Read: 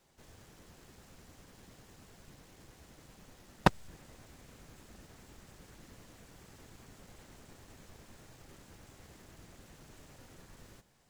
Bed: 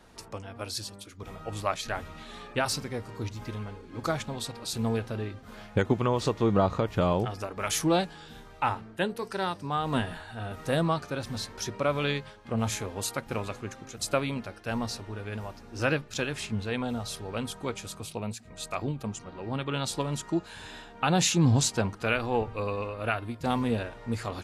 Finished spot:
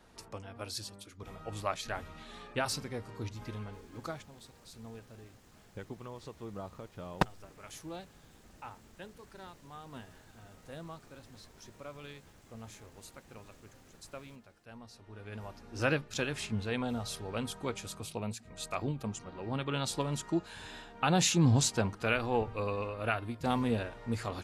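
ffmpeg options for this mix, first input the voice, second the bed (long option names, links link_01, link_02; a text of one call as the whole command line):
ffmpeg -i stem1.wav -i stem2.wav -filter_complex "[0:a]adelay=3550,volume=-4dB[link_01];[1:a]volume=11.5dB,afade=type=out:start_time=3.78:duration=0.51:silence=0.188365,afade=type=in:start_time=14.92:duration=0.84:silence=0.149624[link_02];[link_01][link_02]amix=inputs=2:normalize=0" out.wav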